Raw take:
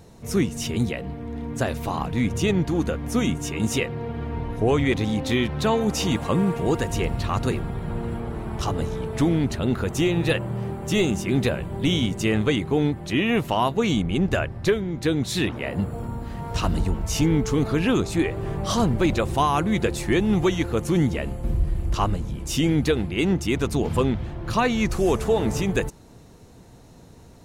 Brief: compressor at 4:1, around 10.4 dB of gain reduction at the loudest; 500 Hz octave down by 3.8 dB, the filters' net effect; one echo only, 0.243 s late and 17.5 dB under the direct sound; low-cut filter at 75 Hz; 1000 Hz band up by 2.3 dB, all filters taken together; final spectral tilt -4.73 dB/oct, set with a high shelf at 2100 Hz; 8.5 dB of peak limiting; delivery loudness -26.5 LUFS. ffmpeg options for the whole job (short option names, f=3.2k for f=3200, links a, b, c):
-af "highpass=75,equalizer=f=500:t=o:g=-6,equalizer=f=1k:t=o:g=3.5,highshelf=f=2.1k:g=5,acompressor=threshold=-29dB:ratio=4,alimiter=level_in=1dB:limit=-24dB:level=0:latency=1,volume=-1dB,aecho=1:1:243:0.133,volume=8dB"